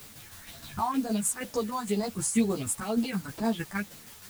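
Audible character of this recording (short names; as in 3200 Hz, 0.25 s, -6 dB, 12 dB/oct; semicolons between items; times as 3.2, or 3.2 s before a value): phasing stages 4, 2.1 Hz, lowest notch 420–2600 Hz; a quantiser's noise floor 8-bit, dither triangular; tremolo saw down 6.4 Hz, depth 50%; a shimmering, thickened sound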